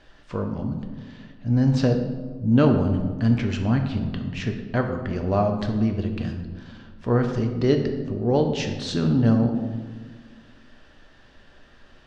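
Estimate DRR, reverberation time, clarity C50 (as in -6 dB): 4.0 dB, 1.6 s, 7.0 dB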